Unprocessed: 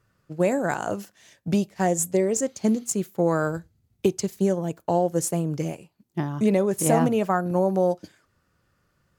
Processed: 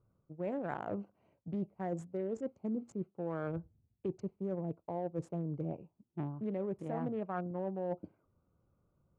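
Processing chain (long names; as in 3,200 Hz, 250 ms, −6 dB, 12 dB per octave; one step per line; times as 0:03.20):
adaptive Wiener filter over 25 samples
low-pass filter 1,900 Hz 12 dB per octave
reversed playback
downward compressor 6 to 1, threshold −30 dBFS, peak gain reduction 14 dB
reversed playback
level −4.5 dB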